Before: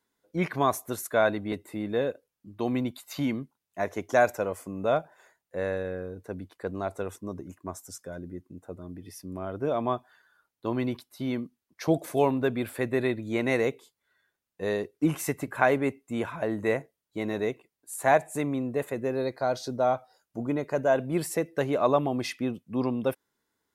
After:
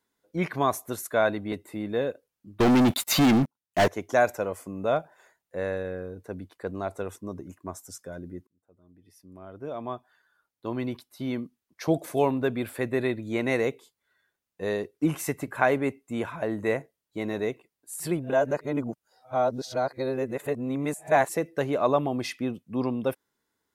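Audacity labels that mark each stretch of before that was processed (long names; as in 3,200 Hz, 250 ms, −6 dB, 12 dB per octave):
2.600000	3.880000	leveller curve on the samples passes 5
8.470000	11.420000	fade in
18.000000	21.290000	reverse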